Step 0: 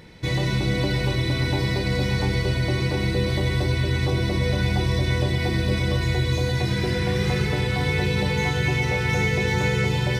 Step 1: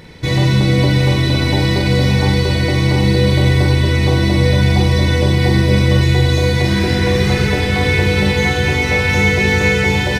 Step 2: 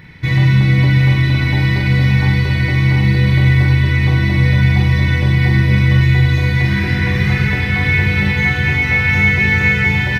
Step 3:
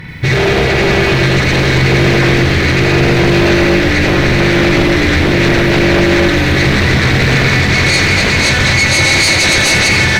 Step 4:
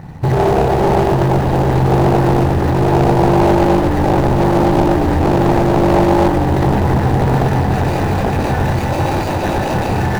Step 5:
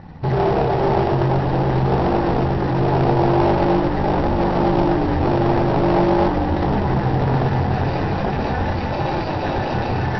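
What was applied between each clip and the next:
doubler 45 ms -5.5 dB; split-band echo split 520 Hz, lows 84 ms, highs 0.74 s, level -8.5 dB; gain +7 dB
graphic EQ 125/500/2000/4000/8000 Hz +7/-9/+9/-3/-10 dB; gain -3.5 dB
sine folder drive 14 dB, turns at -1 dBFS; lo-fi delay 84 ms, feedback 80%, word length 6-bit, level -10.5 dB; gain -7.5 dB
median filter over 41 samples; bell 840 Hz +15 dB 0.69 oct; gain -2.5 dB
Chebyshev low-pass 5600 Hz, order 8; flange 0.46 Hz, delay 3.4 ms, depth 5.4 ms, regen -51%

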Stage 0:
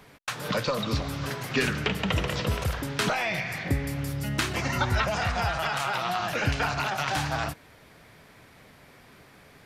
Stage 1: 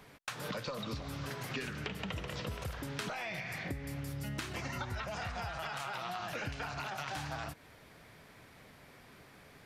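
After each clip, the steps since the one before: compressor 5:1, threshold -33 dBFS, peak gain reduction 12 dB; gain -4 dB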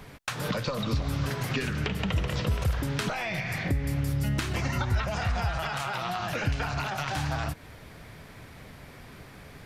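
low shelf 130 Hz +11 dB; gain +7.5 dB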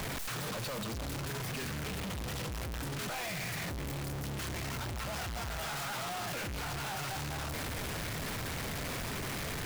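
infinite clipping; gain -7.5 dB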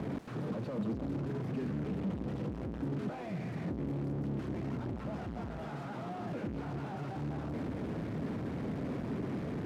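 band-pass 250 Hz, Q 1.4; gain +8.5 dB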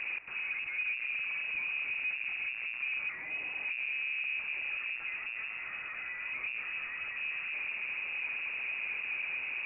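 inverted band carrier 2700 Hz

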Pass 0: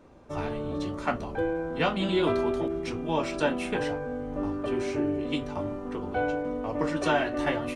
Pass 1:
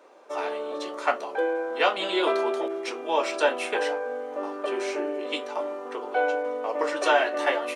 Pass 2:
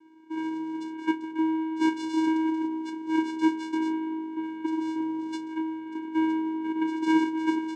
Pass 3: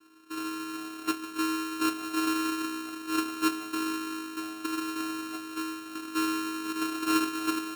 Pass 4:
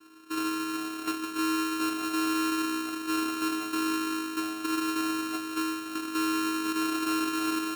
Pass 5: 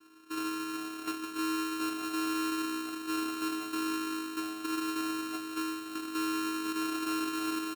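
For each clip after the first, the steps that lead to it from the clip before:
HPF 420 Hz 24 dB/oct; gain +5 dB
vocoder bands 4, square 319 Hz
sample sorter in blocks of 32 samples; on a send at -18.5 dB: reverb RT60 1.6 s, pre-delay 87 ms; on the sum: gain -4 dB
limiter -26.5 dBFS, peak gain reduction 10 dB; gain +4.5 dB
echo 1.035 s -20.5 dB; gain -4.5 dB

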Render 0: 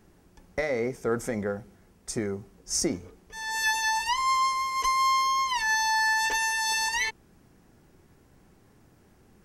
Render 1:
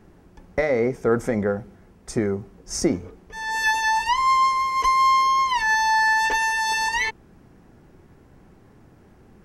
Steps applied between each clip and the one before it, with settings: high shelf 3400 Hz -11.5 dB; gain +7.5 dB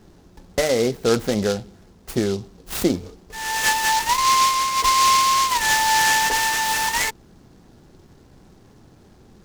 noise-modulated delay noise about 4300 Hz, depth 0.069 ms; gain +1.5 dB

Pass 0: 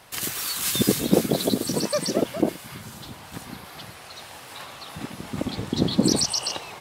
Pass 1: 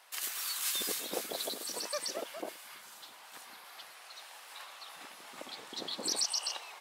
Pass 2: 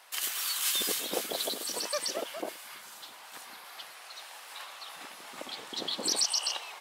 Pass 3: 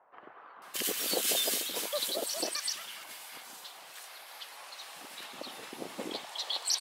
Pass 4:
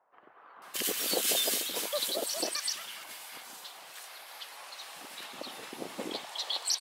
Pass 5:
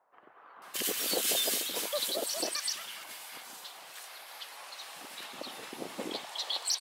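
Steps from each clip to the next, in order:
HPF 760 Hz 12 dB/oct; gain -8 dB
dynamic EQ 3100 Hz, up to +5 dB, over -56 dBFS, Q 5.6; gain +4 dB
bands offset in time lows, highs 0.62 s, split 1200 Hz
AGC gain up to 8.5 dB; gain -7.5 dB
soft clip -19 dBFS, distortion -23 dB

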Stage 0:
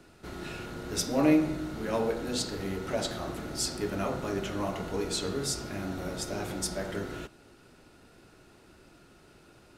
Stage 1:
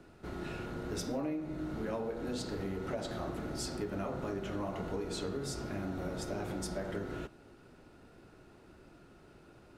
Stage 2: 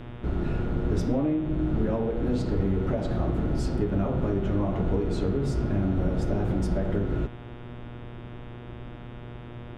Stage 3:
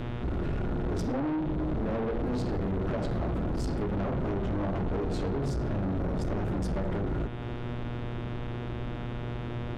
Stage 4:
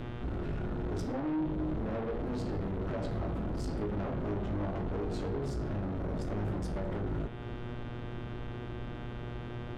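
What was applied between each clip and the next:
high shelf 2300 Hz -9.5 dB; compressor 10:1, threshold -33 dBFS, peak gain reduction 15 dB
tilt -3.5 dB/oct; buzz 120 Hz, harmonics 31, -47 dBFS -6 dB/oct; gain +4.5 dB
in parallel at +2.5 dB: compressor, threshold -34 dBFS, peak gain reduction 14 dB; on the sum: soft clip -27 dBFS, distortion -8 dB
resonator 52 Hz, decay 0.28 s, harmonics all, mix 70%

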